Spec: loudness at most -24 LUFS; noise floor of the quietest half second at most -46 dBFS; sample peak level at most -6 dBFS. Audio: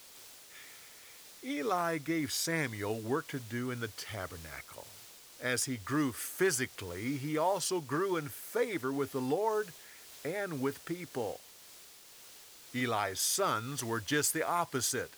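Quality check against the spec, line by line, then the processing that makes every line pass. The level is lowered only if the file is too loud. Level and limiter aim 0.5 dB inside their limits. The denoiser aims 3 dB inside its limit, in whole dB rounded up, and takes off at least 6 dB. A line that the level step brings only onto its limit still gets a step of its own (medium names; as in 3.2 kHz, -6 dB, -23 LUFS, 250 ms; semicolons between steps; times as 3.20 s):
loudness -34.0 LUFS: pass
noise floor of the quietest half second -55 dBFS: pass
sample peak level -18.0 dBFS: pass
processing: none needed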